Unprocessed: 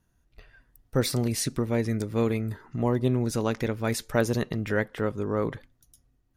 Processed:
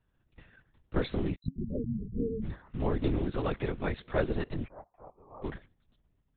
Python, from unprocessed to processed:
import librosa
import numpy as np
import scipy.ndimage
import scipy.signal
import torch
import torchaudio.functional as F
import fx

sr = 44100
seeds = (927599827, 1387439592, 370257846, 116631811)

y = fx.block_float(x, sr, bits=5)
y = fx.spec_topn(y, sr, count=4, at=(1.34, 2.42), fade=0.02)
y = fx.formant_cascade(y, sr, vowel='a', at=(4.65, 5.43), fade=0.02)
y = fx.lpc_vocoder(y, sr, seeds[0], excitation='whisper', order=10)
y = y * librosa.db_to_amplitude(-4.5)